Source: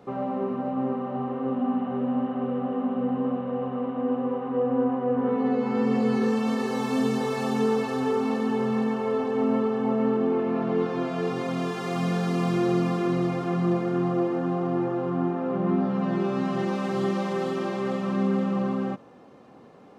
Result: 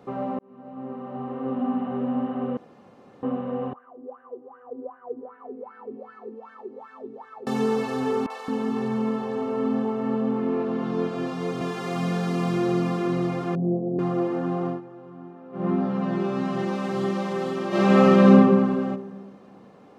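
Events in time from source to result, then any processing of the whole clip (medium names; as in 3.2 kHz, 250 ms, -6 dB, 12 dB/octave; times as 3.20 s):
0.39–1.61 s: fade in
2.57–3.23 s: room tone
3.73–7.47 s: wah-wah 2.6 Hz 310–1600 Hz, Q 11
8.26–11.61 s: three bands offset in time mids, highs, lows 40/220 ms, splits 600/2000 Hz
13.55–13.99 s: elliptic low-pass 650 Hz, stop band 70 dB
14.68–15.65 s: dip -16 dB, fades 0.13 s
17.68–18.30 s: reverb throw, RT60 1.6 s, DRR -11.5 dB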